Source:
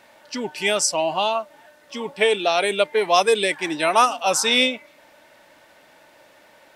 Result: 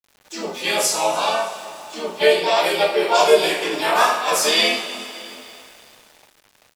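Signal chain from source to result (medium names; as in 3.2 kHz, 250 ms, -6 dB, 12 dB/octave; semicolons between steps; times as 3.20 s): peaking EQ 170 Hz -3.5 dB 1.9 oct; harmony voices -3 st -5 dB, +5 st -2 dB; on a send: feedback delay 310 ms, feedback 54%, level -23 dB; on the sum: two-slope reverb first 0.46 s, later 3.4 s, from -18 dB, DRR -9.5 dB; small samples zeroed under -32.5 dBFS; trim -11 dB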